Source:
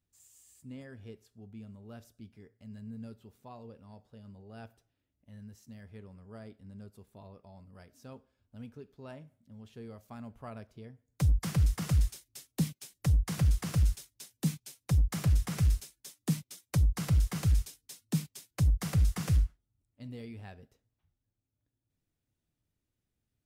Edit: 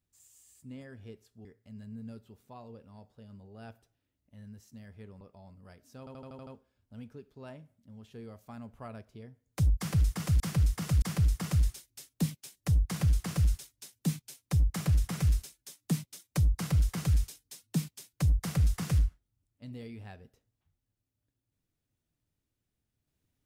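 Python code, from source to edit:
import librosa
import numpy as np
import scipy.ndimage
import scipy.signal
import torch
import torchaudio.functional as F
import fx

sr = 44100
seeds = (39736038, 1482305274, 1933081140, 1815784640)

y = fx.edit(x, sr, fx.cut(start_s=1.45, length_s=0.95),
    fx.cut(start_s=6.16, length_s=1.15),
    fx.stutter(start_s=8.09, slice_s=0.08, count=7),
    fx.repeat(start_s=11.4, length_s=0.62, count=3), tone=tone)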